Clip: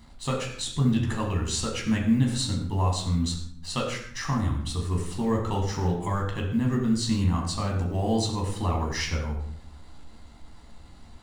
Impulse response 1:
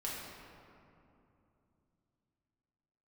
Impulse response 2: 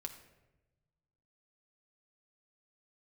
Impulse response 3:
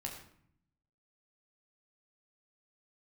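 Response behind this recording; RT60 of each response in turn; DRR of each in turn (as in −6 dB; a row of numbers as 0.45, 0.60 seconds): 3; 2.8, 1.1, 0.60 seconds; −6.0, 4.0, −1.0 decibels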